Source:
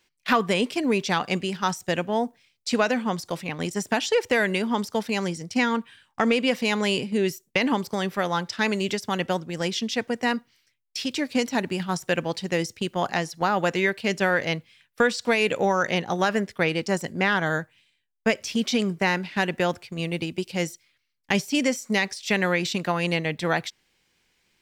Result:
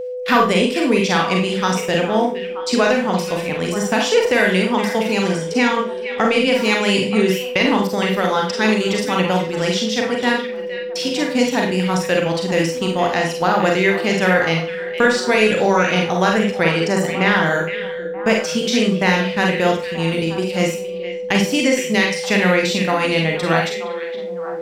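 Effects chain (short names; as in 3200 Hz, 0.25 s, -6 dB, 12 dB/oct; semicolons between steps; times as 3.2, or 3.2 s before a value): delay with a stepping band-pass 0.465 s, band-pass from 2600 Hz, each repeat -1.4 oct, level -7.5 dB; Schroeder reverb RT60 0.36 s, combs from 33 ms, DRR 0.5 dB; whine 500 Hz -28 dBFS; gain +4 dB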